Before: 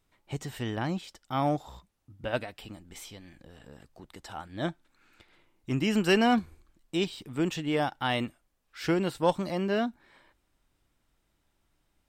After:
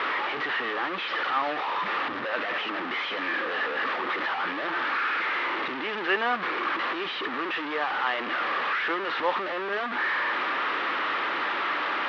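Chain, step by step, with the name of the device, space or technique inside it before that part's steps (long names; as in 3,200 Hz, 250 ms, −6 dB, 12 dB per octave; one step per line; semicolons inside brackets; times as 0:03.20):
digital answering machine (band-pass filter 390–3,100 Hz; linear delta modulator 32 kbit/s, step −24 dBFS; loudspeaker in its box 350–3,300 Hz, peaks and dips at 670 Hz −5 dB, 1,200 Hz +9 dB, 1,800 Hz +6 dB)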